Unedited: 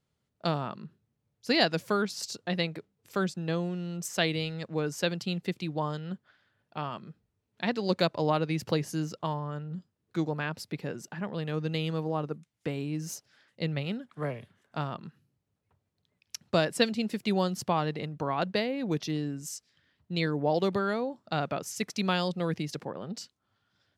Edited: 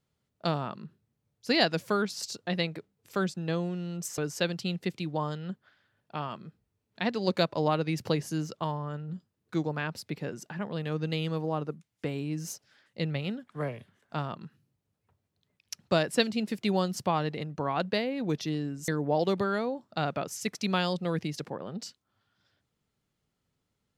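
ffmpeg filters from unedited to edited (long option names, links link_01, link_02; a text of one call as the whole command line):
ffmpeg -i in.wav -filter_complex "[0:a]asplit=3[link_01][link_02][link_03];[link_01]atrim=end=4.182[link_04];[link_02]atrim=start=4.798:end=19.502[link_05];[link_03]atrim=start=20.228[link_06];[link_04][link_05]acrossfade=duration=0.004:curve1=hsin:curve2=hsin[link_07];[link_07][link_06]acrossfade=duration=0.004:curve1=hsin:curve2=hsin" out.wav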